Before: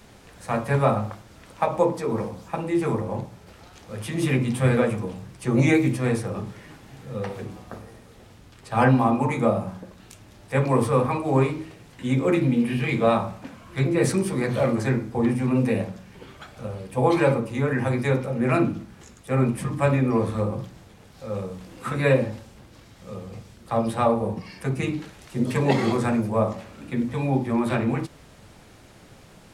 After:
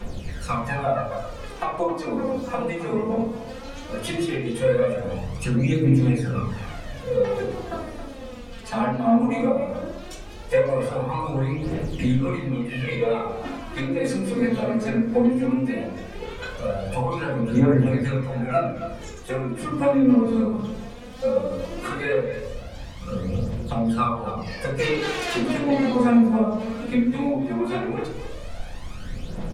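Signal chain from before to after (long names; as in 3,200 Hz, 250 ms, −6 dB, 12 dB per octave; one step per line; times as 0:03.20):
0:05.69–0:06.37: comb filter 7 ms
0:11.62–0:12.28: leveller curve on the samples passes 1
downward compressor 6 to 1, threshold −31 dBFS, peak gain reduction 17 dB
phase shifter 0.17 Hz, delay 4.8 ms, feedback 72%
0:24.78–0:25.51: mid-hump overdrive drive 21 dB, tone 5,100 Hz, clips at −21 dBFS
far-end echo of a speakerphone 270 ms, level −11 dB
convolution reverb RT60 0.50 s, pre-delay 4 ms, DRR −6.5 dB
level −2.5 dB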